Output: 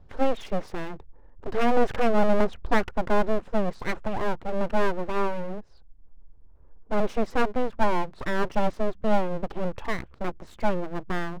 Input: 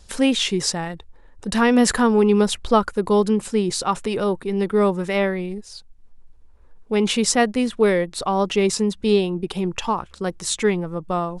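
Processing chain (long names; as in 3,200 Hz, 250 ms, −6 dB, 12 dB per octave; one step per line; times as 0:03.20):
Bessel low-pass filter 860 Hz, order 2
full-wave rectification
level −1 dB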